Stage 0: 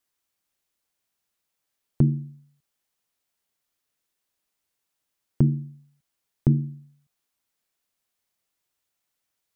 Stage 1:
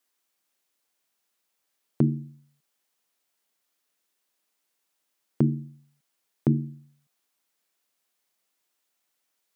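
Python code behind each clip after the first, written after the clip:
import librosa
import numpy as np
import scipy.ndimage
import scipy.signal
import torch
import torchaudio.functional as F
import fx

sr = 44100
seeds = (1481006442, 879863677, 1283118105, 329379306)

y = scipy.signal.sosfilt(scipy.signal.butter(2, 210.0, 'highpass', fs=sr, output='sos'), x)
y = F.gain(torch.from_numpy(y), 3.0).numpy()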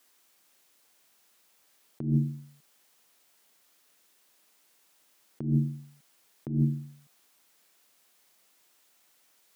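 y = fx.over_compress(x, sr, threshold_db=-32.0, ratio=-1.0)
y = F.gain(torch.from_numpy(y), 5.0).numpy()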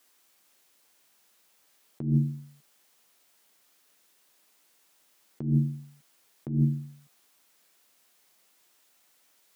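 y = fx.doubler(x, sr, ms=14.0, db=-13.0)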